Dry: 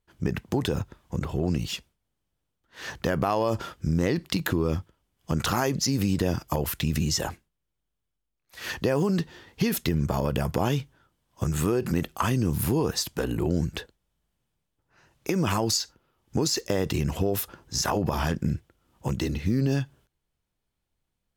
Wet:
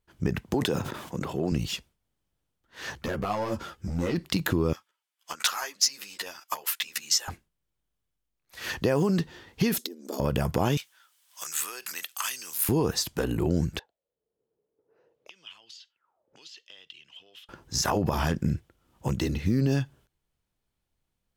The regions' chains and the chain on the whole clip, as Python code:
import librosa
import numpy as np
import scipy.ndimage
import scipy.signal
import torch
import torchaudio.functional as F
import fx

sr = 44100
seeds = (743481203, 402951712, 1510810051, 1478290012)

y = fx.chain(x, sr, fx.highpass(hz=180.0, slope=12),
    fx.sustainer(db_per_s=52.0), at=(0.54, 1.52))
y = fx.chain(y, sr, fx.clip_hard(threshold_db=-19.0),
    fx.ensemble(), at=(2.95, 4.15))
y = fx.chain(y, sr, fx.highpass(hz=1200.0, slope=12),
    fx.transient(attack_db=10, sustain_db=-2),
    fx.ensemble(), at=(4.73, 7.28))
y = fx.chain(y, sr, fx.band_shelf(hz=1400.0, db=-13.5, octaves=2.4),
    fx.over_compress(threshold_db=-29.0, ratio=-0.5),
    fx.brickwall_highpass(low_hz=220.0), at=(9.78, 10.2))
y = fx.chain(y, sr, fx.highpass(hz=1500.0, slope=12),
    fx.high_shelf(hz=3900.0, db=9.0),
    fx.band_squash(depth_pct=40), at=(10.77, 12.69))
y = fx.chain(y, sr, fx.high_shelf(hz=7800.0, db=-4.5),
    fx.auto_wah(base_hz=430.0, top_hz=3100.0, q=9.7, full_db=-30.5, direction='up'),
    fx.band_squash(depth_pct=70), at=(13.79, 17.49))